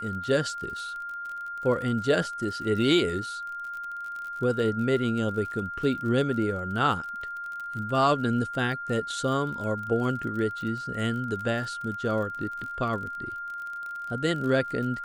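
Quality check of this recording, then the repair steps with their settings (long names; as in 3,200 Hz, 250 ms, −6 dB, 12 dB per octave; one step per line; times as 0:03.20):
surface crackle 36 per second −35 dBFS
whistle 1,400 Hz −33 dBFS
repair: click removal
notch filter 1,400 Hz, Q 30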